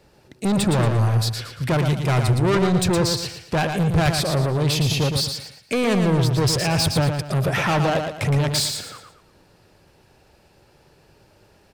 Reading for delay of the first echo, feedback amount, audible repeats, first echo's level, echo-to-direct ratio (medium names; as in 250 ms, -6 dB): 115 ms, 34%, 4, -6.0 dB, -5.5 dB